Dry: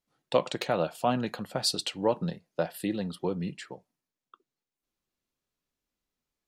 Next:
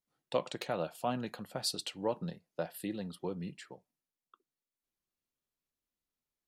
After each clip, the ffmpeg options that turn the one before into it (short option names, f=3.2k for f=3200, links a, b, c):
-af "equalizer=f=12k:t=o:w=0.67:g=5,volume=-7.5dB"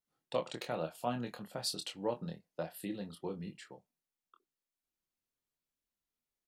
-filter_complex "[0:a]asplit=2[a][b];[b]adelay=25,volume=-6dB[c];[a][c]amix=inputs=2:normalize=0,volume=-3dB"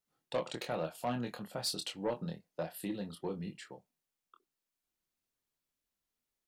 -af "asoftclip=type=tanh:threshold=-28.5dB,volume=2.5dB"